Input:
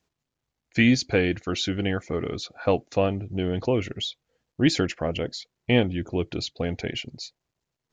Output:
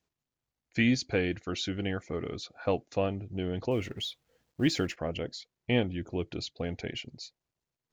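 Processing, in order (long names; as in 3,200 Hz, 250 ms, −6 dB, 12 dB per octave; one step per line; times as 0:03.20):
0:03.71–0:04.96: mu-law and A-law mismatch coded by mu
level −6.5 dB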